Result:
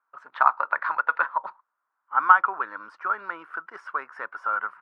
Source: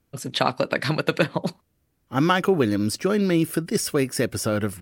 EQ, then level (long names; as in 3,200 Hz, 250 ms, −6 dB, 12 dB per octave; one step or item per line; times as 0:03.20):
high-pass with resonance 980 Hz, resonance Q 4.9
low-pass with resonance 1,400 Hz, resonance Q 4.7
−10.5 dB